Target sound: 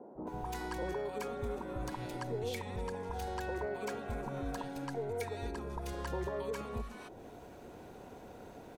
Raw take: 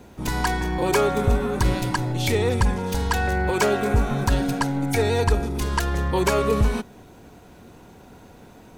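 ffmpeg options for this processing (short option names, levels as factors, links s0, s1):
-filter_complex "[0:a]equalizer=f=620:w=0.53:g=9,acompressor=threshold=0.0398:ratio=5,acrossover=split=190|1000[s0][s1][s2];[s0]adelay=150[s3];[s2]adelay=270[s4];[s3][s1][s4]amix=inputs=3:normalize=0,volume=0.398"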